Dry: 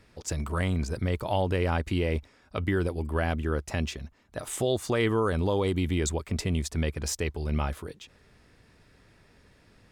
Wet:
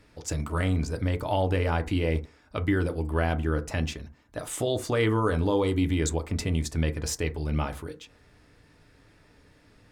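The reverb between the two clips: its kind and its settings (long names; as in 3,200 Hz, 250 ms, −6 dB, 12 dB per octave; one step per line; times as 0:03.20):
feedback delay network reverb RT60 0.31 s, low-frequency decay 1×, high-frequency decay 0.4×, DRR 6.5 dB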